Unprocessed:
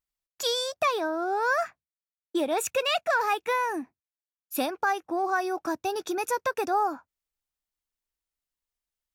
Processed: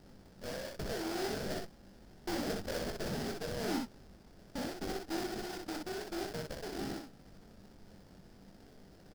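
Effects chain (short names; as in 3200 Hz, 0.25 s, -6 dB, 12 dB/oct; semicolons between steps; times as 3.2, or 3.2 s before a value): Wiener smoothing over 41 samples; Doppler pass-by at 2.6, 12 m/s, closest 6.3 m; low-pass opened by the level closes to 2200 Hz, open at -25.5 dBFS; tube stage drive 46 dB, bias 0.55; low shelf 400 Hz +8.5 dB; added noise pink -65 dBFS; phaser 0.27 Hz, delay 3.8 ms, feedback 21%; sample-rate reducer 1100 Hz, jitter 20%; thirty-one-band EQ 200 Hz +8 dB, 2500 Hz -3 dB, 5000 Hz +9 dB; early reflections 21 ms -7.5 dB, 62 ms -3.5 dB; gain +4.5 dB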